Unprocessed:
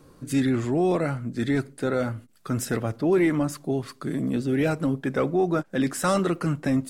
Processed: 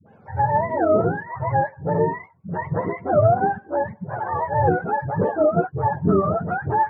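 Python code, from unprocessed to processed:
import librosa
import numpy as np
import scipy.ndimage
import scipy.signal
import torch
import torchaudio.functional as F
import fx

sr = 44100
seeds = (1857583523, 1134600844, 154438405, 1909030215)

y = fx.octave_mirror(x, sr, pivot_hz=480.0)
y = scipy.signal.sosfilt(scipy.signal.butter(2, 1200.0, 'lowpass', fs=sr, output='sos'), y)
y = fx.dispersion(y, sr, late='highs', ms=70.0, hz=430.0)
y = F.gain(torch.from_numpy(y), 6.5).numpy()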